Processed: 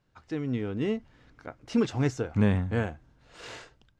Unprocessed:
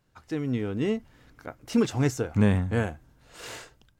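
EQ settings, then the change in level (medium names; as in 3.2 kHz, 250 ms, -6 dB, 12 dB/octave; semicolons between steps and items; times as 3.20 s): low-pass 5.6 kHz 12 dB/octave; -2.0 dB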